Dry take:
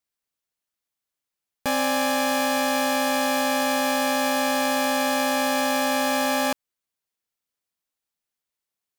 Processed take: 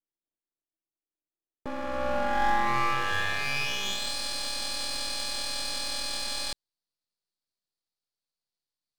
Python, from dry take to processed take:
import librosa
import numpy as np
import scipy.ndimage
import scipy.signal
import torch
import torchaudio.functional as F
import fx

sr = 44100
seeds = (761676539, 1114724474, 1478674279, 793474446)

y = fx.formant_shift(x, sr, semitones=6)
y = fx.filter_sweep_bandpass(y, sr, from_hz=330.0, to_hz=4400.0, start_s=1.58, end_s=4.15, q=4.7)
y = np.maximum(y, 0.0)
y = y * 10.0 ** (9.0 / 20.0)